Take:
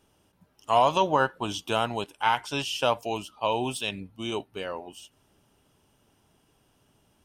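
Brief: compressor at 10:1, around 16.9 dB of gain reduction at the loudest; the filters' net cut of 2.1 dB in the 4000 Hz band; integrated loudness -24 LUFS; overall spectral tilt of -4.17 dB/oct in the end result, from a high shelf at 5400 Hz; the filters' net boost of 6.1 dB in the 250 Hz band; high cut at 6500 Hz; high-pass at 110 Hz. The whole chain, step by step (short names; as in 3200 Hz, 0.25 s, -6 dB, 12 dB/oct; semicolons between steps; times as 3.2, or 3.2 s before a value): HPF 110 Hz; LPF 6500 Hz; bell 250 Hz +8 dB; bell 4000 Hz -5 dB; high shelf 5400 Hz +6 dB; compressor 10:1, threshold -33 dBFS; gain +15 dB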